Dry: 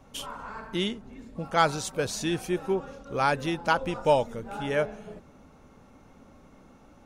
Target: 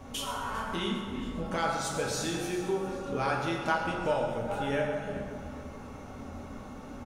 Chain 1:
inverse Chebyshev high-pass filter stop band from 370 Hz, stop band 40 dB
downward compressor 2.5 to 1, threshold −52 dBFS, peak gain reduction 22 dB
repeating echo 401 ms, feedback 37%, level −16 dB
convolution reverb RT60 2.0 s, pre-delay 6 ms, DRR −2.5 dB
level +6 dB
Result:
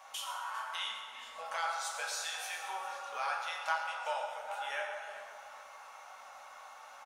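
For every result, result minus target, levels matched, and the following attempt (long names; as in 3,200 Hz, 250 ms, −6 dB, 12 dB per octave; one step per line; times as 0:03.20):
500 Hz band −7.5 dB; downward compressor: peak gain reduction +4 dB
downward compressor 2.5 to 1, threshold −52 dBFS, peak gain reduction 23 dB
repeating echo 401 ms, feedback 37%, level −16 dB
convolution reverb RT60 2.0 s, pre-delay 6 ms, DRR −2.5 dB
level +6 dB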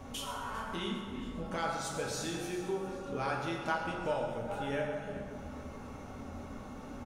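downward compressor: peak gain reduction +5 dB
downward compressor 2.5 to 1, threshold −44 dBFS, peak gain reduction 18 dB
repeating echo 401 ms, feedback 37%, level −16 dB
convolution reverb RT60 2.0 s, pre-delay 6 ms, DRR −2.5 dB
level +6 dB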